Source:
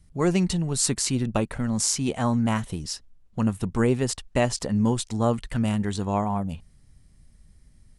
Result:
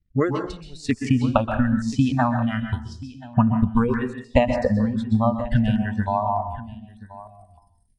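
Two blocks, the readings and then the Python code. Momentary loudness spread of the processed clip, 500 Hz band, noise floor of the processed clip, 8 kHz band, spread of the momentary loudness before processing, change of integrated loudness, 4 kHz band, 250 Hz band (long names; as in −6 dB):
16 LU, +3.0 dB, −60 dBFS, below −15 dB, 8 LU, +2.5 dB, −6.5 dB, +3.5 dB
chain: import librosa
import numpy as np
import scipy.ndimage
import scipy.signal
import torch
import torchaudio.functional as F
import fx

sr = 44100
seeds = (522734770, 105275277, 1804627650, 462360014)

p1 = fx.filter_sweep_lowpass(x, sr, from_hz=2800.0, to_hz=6600.0, start_s=6.17, end_s=6.88, q=0.89)
p2 = fx.dynamic_eq(p1, sr, hz=1200.0, q=1.9, threshold_db=-43.0, ratio=4.0, max_db=4)
p3 = fx.over_compress(p2, sr, threshold_db=-26.0, ratio=-1.0)
p4 = p2 + (p3 * 10.0 ** (0.0 / 20.0))
p5 = fx.transient(p4, sr, attack_db=11, sustain_db=-10)
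p6 = fx.noise_reduce_blind(p5, sr, reduce_db=22)
p7 = p6 + fx.echo_single(p6, sr, ms=1031, db=-18.0, dry=0)
p8 = fx.rev_plate(p7, sr, seeds[0], rt60_s=0.51, hf_ratio=0.85, predelay_ms=115, drr_db=6.5)
p9 = fx.filter_held_notch(p8, sr, hz=3.3, low_hz=920.0, high_hz=5000.0)
y = p9 * 10.0 ** (-2.5 / 20.0)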